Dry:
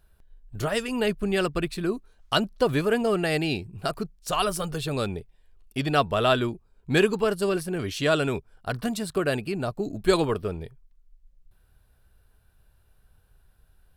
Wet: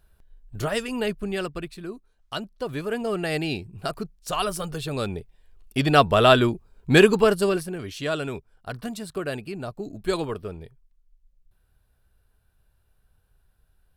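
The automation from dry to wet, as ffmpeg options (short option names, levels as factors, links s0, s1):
-af "volume=5.62,afade=t=out:st=0.7:d=1.09:silence=0.354813,afade=t=in:st=2.62:d=0.76:silence=0.421697,afade=t=in:st=4.92:d=1.16:silence=0.446684,afade=t=out:st=7.24:d=0.54:silence=0.298538"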